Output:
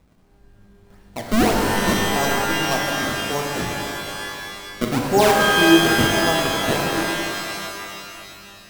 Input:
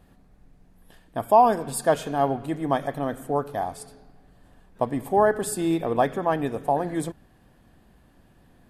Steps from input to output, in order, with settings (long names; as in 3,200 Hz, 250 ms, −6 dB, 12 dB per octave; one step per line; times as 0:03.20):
0:04.83–0:05.88: tilt shelving filter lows +8 dB, about 1,100 Hz
sample-and-hold swept by an LFO 29×, swing 160% 1.7 Hz
reverb with rising layers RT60 2.6 s, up +12 semitones, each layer −2 dB, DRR 1 dB
level −2 dB